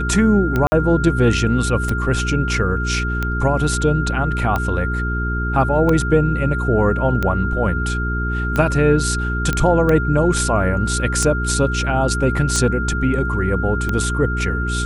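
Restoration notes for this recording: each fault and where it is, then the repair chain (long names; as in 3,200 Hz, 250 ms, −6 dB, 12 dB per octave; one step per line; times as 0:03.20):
mains hum 60 Hz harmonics 7 −22 dBFS
scratch tick 45 rpm −8 dBFS
whistle 1,400 Hz −24 dBFS
0:00.67–0:00.72: drop-out 50 ms
0:09.53: click −6 dBFS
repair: click removal
notch filter 1,400 Hz, Q 30
hum removal 60 Hz, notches 7
repair the gap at 0:00.67, 50 ms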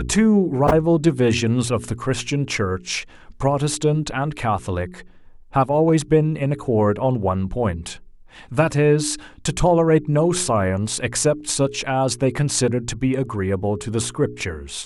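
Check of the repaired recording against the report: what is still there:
none of them is left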